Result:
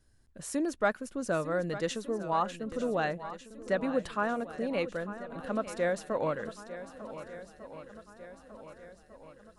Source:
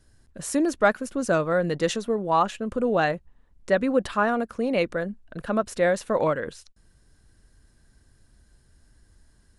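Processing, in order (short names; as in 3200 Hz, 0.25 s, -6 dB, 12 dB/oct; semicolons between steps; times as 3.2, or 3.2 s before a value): swung echo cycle 1.499 s, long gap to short 1.5:1, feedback 49%, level -13.5 dB; gain -8 dB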